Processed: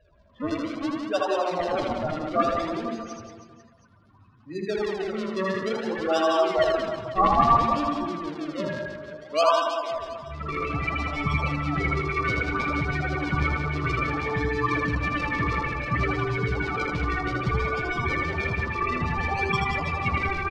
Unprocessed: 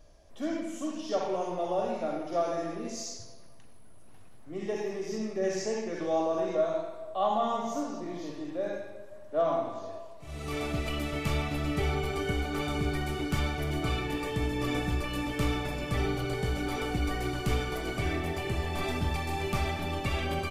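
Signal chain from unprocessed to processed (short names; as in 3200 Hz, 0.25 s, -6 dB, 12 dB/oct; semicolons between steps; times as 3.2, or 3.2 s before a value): HPF 65 Hz; band shelf 1600 Hz +9 dB; loudest bins only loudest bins 8; in parallel at -3 dB: decimation with a swept rate 39×, swing 100% 0.6 Hz; on the sum: LFO low-pass sine 6.2 Hz 970–5200 Hz; on a send: reverse bouncing-ball echo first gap 80 ms, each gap 1.3×, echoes 5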